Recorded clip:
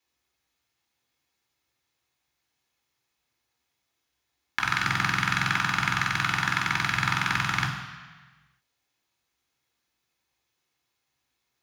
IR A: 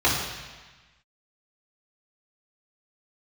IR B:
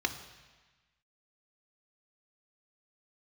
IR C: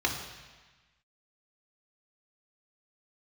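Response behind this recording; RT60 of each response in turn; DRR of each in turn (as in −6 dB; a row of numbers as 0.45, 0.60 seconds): C; 1.3, 1.3, 1.3 seconds; −9.0, 7.0, 0.0 decibels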